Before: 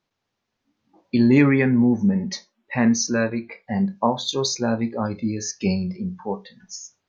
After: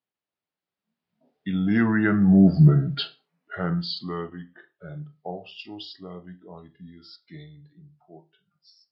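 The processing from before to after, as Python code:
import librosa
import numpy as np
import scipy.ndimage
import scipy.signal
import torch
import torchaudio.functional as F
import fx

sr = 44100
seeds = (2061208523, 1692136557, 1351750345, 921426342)

y = fx.speed_glide(x, sr, from_pct=72, to_pct=87)
y = fx.doppler_pass(y, sr, speed_mps=19, closest_m=4.0, pass_at_s=2.6)
y = scipy.signal.sosfilt(scipy.signal.bessel(2, 160.0, 'highpass', norm='mag', fs=sr, output='sos'), y)
y = y * librosa.db_to_amplitude(8.0)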